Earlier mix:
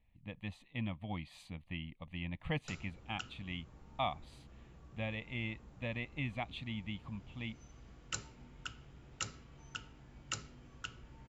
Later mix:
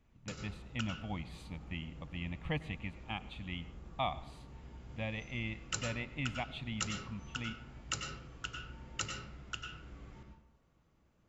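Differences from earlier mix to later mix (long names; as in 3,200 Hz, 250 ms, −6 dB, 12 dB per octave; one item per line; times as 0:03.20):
background: entry −2.40 s
reverb: on, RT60 0.70 s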